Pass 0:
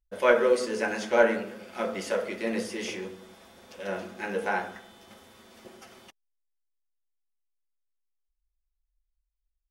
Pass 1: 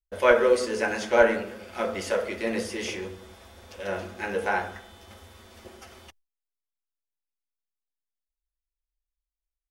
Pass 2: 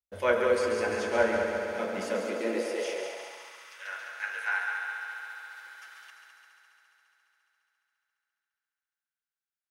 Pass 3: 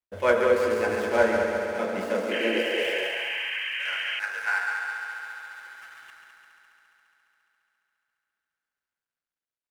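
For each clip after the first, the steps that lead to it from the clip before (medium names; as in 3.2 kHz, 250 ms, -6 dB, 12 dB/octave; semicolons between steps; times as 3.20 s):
gate with hold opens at -46 dBFS; resonant low shelf 110 Hz +8.5 dB, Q 3; trim +2.5 dB
multi-head delay 69 ms, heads second and third, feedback 73%, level -7 dB; high-pass sweep 100 Hz -> 1.5 kHz, 1.58–3.85 s; trim -7 dB
median filter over 9 samples; painted sound noise, 2.31–4.20 s, 1.5–3.2 kHz -35 dBFS; trim +4 dB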